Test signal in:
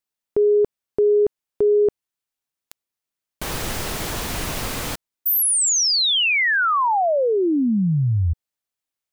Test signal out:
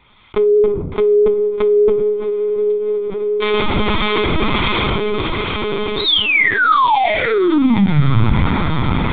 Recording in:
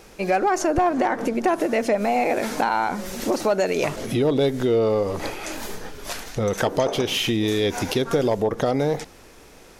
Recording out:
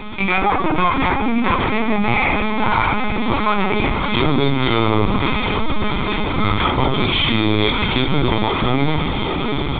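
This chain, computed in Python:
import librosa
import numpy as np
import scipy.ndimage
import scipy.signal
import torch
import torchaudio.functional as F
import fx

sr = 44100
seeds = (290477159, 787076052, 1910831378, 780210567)

p1 = fx.spec_flatten(x, sr, power=0.62)
p2 = p1 + 0.77 * np.pad(p1, (int(0.9 * sr / 1000.0), 0))[:len(p1)]
p3 = fx.rider(p2, sr, range_db=3, speed_s=2.0)
p4 = p2 + (p3 * librosa.db_to_amplitude(2.5))
p5 = fx.harmonic_tremolo(p4, sr, hz=1.6, depth_pct=50, crossover_hz=820.0)
p6 = p5 + fx.echo_diffused(p5, sr, ms=771, feedback_pct=73, wet_db=-9.5, dry=0)
p7 = fx.room_shoebox(p6, sr, seeds[0], volume_m3=380.0, walls='furnished', distance_m=1.4)
p8 = fx.lpc_vocoder(p7, sr, seeds[1], excitation='pitch_kept', order=16)
p9 = fx.env_flatten(p8, sr, amount_pct=50)
y = p9 * librosa.db_to_amplitude(-6.5)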